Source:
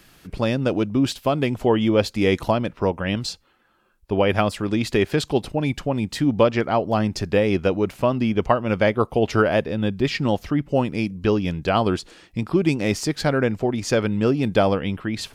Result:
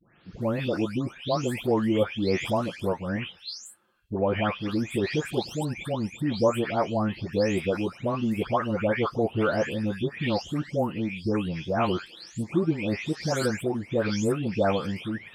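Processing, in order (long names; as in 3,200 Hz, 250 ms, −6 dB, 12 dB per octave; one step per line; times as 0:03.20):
every frequency bin delayed by itself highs late, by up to 412 ms
high-pass filter 69 Hz
level −4.5 dB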